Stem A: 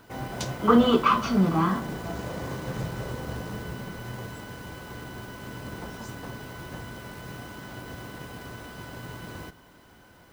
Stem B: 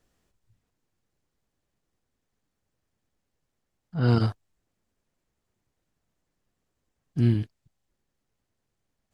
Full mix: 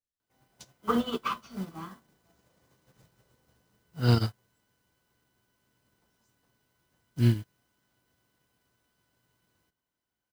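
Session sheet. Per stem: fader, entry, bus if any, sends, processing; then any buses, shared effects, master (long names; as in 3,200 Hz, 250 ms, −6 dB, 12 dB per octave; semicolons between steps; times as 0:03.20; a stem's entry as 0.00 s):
−5.0 dB, 0.20 s, no send, no processing
−0.5 dB, 0.00 s, no send, parametric band 71 Hz +4 dB 1.2 octaves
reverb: not used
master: high-shelf EQ 2,900 Hz +11.5 dB; expander for the loud parts 2.5 to 1, over −38 dBFS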